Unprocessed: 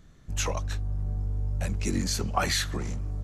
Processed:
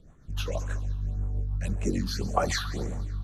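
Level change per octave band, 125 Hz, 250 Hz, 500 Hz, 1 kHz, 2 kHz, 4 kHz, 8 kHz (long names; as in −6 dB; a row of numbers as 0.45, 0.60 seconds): −1.0, 0.0, +2.5, 0.0, −3.0, −4.0, −7.0 decibels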